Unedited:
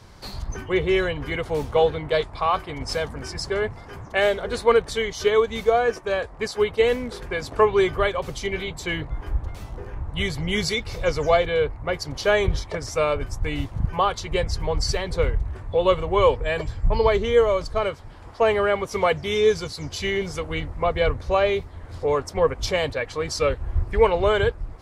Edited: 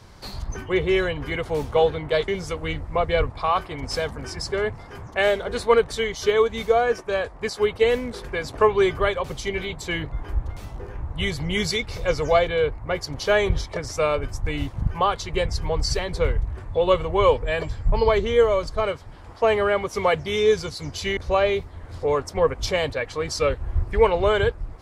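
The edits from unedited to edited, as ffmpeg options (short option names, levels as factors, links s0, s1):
-filter_complex "[0:a]asplit=4[s0][s1][s2][s3];[s0]atrim=end=2.282[s4];[s1]atrim=start=20.148:end=21.172[s5];[s2]atrim=start=2.278:end=20.152[s6];[s3]atrim=start=21.168[s7];[s4][s5]acrossfade=d=0.004:c1=hsin:c2=hsin[s8];[s8][s6]acrossfade=d=0.004:c1=hsin:c2=hsin[s9];[s9][s7]acrossfade=d=0.004:c1=hsin:c2=hsin"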